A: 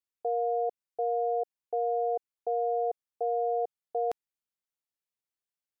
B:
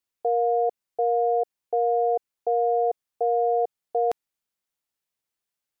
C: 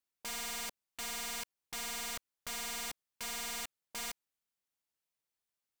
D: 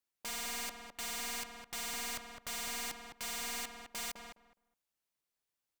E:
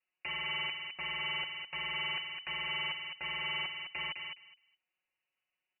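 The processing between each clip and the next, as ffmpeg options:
-af "acontrast=65"
-af "aeval=exprs='(mod(31.6*val(0)+1,2)-1)/31.6':c=same,volume=-5dB"
-filter_complex "[0:a]asplit=2[a][b];[b]adelay=208,lowpass=f=1.6k:p=1,volume=-4dB,asplit=2[c][d];[d]adelay=208,lowpass=f=1.6k:p=1,volume=0.19,asplit=2[e][f];[f]adelay=208,lowpass=f=1.6k:p=1,volume=0.19[g];[a][c][e][g]amix=inputs=4:normalize=0"
-af "aecho=1:1:5.3:0.88,lowpass=f=2.6k:t=q:w=0.5098,lowpass=f=2.6k:t=q:w=0.6013,lowpass=f=2.6k:t=q:w=0.9,lowpass=f=2.6k:t=q:w=2.563,afreqshift=-3000,aexciter=amount=2.3:drive=6.7:freq=2.1k"

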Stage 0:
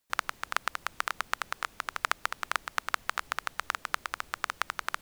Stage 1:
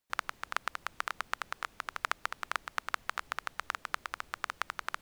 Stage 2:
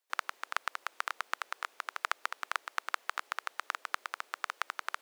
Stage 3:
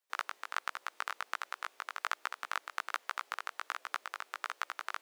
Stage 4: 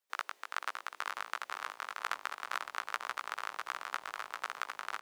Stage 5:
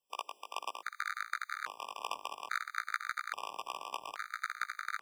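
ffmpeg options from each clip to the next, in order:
-af "highshelf=f=5.4k:g=-4.5,volume=-3.5dB"
-af "highpass=f=400:w=0.5412,highpass=f=400:w=1.3066"
-af "flanger=delay=15.5:depth=3.8:speed=1.3,volume=1dB"
-filter_complex "[0:a]asplit=7[a][b][c][d][e][f][g];[b]adelay=493,afreqshift=-100,volume=-6dB[h];[c]adelay=986,afreqshift=-200,volume=-12.2dB[i];[d]adelay=1479,afreqshift=-300,volume=-18.4dB[j];[e]adelay=1972,afreqshift=-400,volume=-24.6dB[k];[f]adelay=2465,afreqshift=-500,volume=-30.8dB[l];[g]adelay=2958,afreqshift=-600,volume=-37dB[m];[a][h][i][j][k][l][m]amix=inputs=7:normalize=0,volume=-1dB"
-af "afftfilt=real='re*gt(sin(2*PI*0.6*pts/sr)*(1-2*mod(floor(b*sr/1024/1200),2)),0)':imag='im*gt(sin(2*PI*0.6*pts/sr)*(1-2*mod(floor(b*sr/1024/1200),2)),0)':win_size=1024:overlap=0.75,volume=3dB"

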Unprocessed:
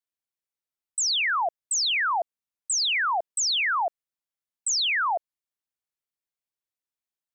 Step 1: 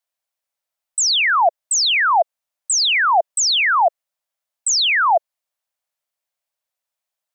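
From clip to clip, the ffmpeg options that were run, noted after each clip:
-af "lowshelf=f=470:t=q:w=3:g=-7.5,volume=7.5dB"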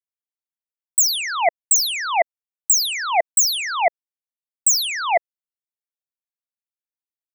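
-af "highshelf=f=7.5k:g=10,aeval=exprs='0.398*(cos(1*acos(clip(val(0)/0.398,-1,1)))-cos(1*PI/2))+0.141*(cos(3*acos(clip(val(0)/0.398,-1,1)))-cos(3*PI/2))':c=same"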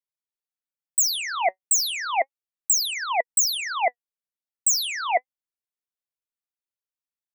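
-af "flanger=delay=1.9:depth=3.4:regen=66:speed=0.33:shape=sinusoidal"

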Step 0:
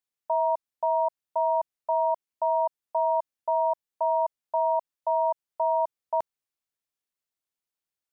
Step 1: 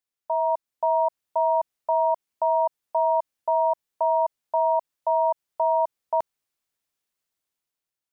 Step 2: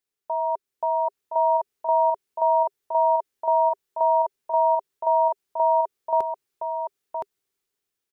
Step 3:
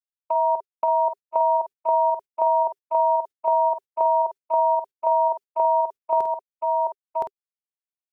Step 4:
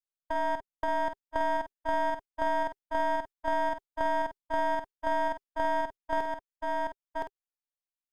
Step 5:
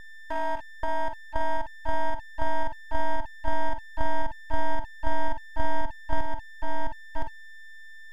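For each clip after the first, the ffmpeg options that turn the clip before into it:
-af "dynaudnorm=f=210:g=7:m=6.5dB,alimiter=limit=-15dB:level=0:latency=1:release=61"
-filter_complex "[0:a]equalizer=f=400:t=o:w=0.33:g=11,equalizer=f=630:t=o:w=0.33:g=-5,equalizer=f=1k:t=o:w=0.33:g=-3,asplit=2[a][b];[b]aecho=0:1:1017:0.562[c];[a][c]amix=inputs=2:normalize=0,volume=1.5dB"
-filter_complex "[0:a]agate=range=-44dB:threshold=-30dB:ratio=16:detection=peak,acompressor=threshold=-24dB:ratio=6,asplit=2[a][b];[b]adelay=49,volume=-8.5dB[c];[a][c]amix=inputs=2:normalize=0,volume=5.5dB"
-af "aeval=exprs='if(lt(val(0),0),0.251*val(0),val(0))':c=same,volume=-5.5dB"
-af "asubboost=boost=10:cutoff=140,aeval=exprs='val(0)+0.0112*sin(2*PI*890*n/s)':c=same,aeval=exprs='abs(val(0))':c=same"

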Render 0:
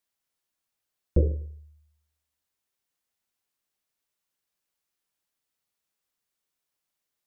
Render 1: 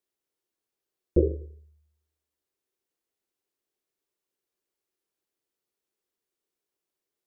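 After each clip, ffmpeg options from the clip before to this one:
-af "equalizer=f=380:t=o:w=0.87:g=15,volume=-5dB"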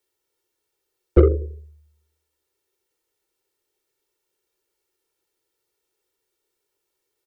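-filter_complex "[0:a]aecho=1:1:2.2:0.66,acrossover=split=160|230|280[a][b][c][d];[d]asoftclip=type=tanh:threshold=-22dB[e];[a][b][c][e]amix=inputs=4:normalize=0,volume=7.5dB"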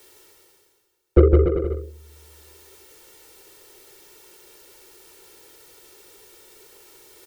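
-af "areverse,acompressor=mode=upward:threshold=-30dB:ratio=2.5,areverse,aecho=1:1:160|288|390.4|472.3|537.9:0.631|0.398|0.251|0.158|0.1"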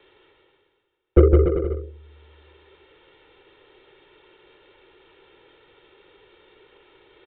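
-af "aresample=8000,aresample=44100"

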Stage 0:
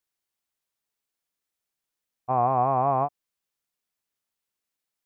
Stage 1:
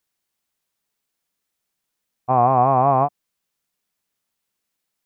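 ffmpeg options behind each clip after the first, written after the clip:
-af "equalizer=f=190:t=o:w=0.78:g=4,volume=6.5dB"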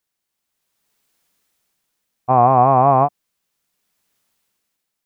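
-af "dynaudnorm=f=230:g=7:m=13dB,volume=-1dB"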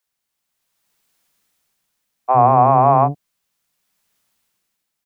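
-filter_complex "[0:a]acrossover=split=380[a][b];[a]adelay=60[c];[c][b]amix=inputs=2:normalize=0,volume=1dB"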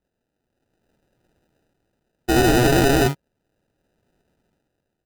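-af "acrusher=samples=40:mix=1:aa=0.000001,aeval=exprs='0.299*(abs(mod(val(0)/0.299+3,4)-2)-1)':c=same"

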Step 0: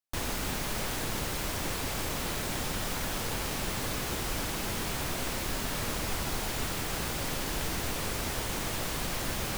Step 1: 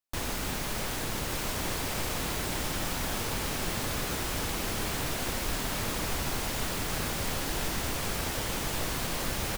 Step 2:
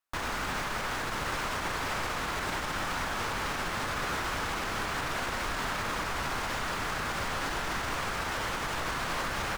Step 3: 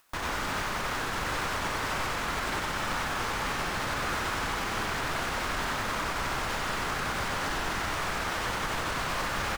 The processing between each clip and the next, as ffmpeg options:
-af "aecho=1:1:1164:0.531"
-filter_complex "[0:a]acrossover=split=8400[a][b];[b]acompressor=threshold=-47dB:ratio=4:attack=1:release=60[c];[a][c]amix=inputs=2:normalize=0,equalizer=f=1.3k:t=o:w=1.8:g=11.5,alimiter=limit=-22.5dB:level=0:latency=1:release=59,volume=-1dB"
-af "acompressor=mode=upward:threshold=-48dB:ratio=2.5,aecho=1:1:93:0.668"

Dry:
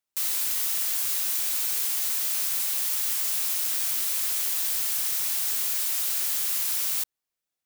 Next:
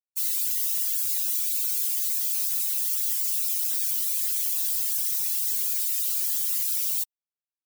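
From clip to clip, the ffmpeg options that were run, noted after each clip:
-af "afftdn=nr=27:nf=-36,volume=2dB"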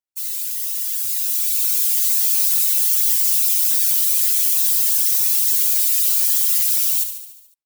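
-filter_complex "[0:a]dynaudnorm=f=540:g=5:m=9dB,asplit=2[a][b];[b]aecho=0:1:72|144|216|288|360|432|504:0.355|0.213|0.128|0.0766|0.046|0.0276|0.0166[c];[a][c]amix=inputs=2:normalize=0"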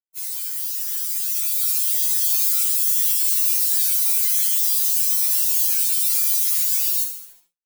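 -filter_complex "[0:a]aeval=exprs='sgn(val(0))*max(abs(val(0))-0.00531,0)':c=same,asplit=2[a][b];[b]adelay=40,volume=-10dB[c];[a][c]amix=inputs=2:normalize=0,afftfilt=real='re*2.83*eq(mod(b,8),0)':imag='im*2.83*eq(mod(b,8),0)':win_size=2048:overlap=0.75"

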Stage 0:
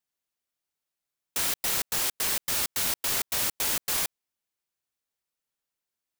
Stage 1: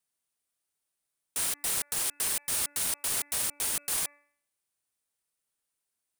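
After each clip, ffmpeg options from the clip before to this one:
-af "equalizer=f=9.3k:w=2.5:g=10.5,bandreject=f=289.5:t=h:w=4,bandreject=f=579:t=h:w=4,bandreject=f=868.5:t=h:w=4,bandreject=f=1.158k:t=h:w=4,bandreject=f=1.4475k:t=h:w=4,bandreject=f=1.737k:t=h:w=4,bandreject=f=2.0265k:t=h:w=4,bandreject=f=2.316k:t=h:w=4,bandreject=f=2.6055k:t=h:w=4,alimiter=limit=-19.5dB:level=0:latency=1:release=85"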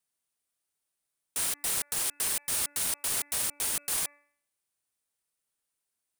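-af anull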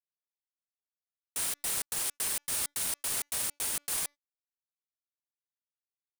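-af "aeval=exprs='sgn(val(0))*max(abs(val(0))-0.0015,0)':c=same,volume=-2dB"

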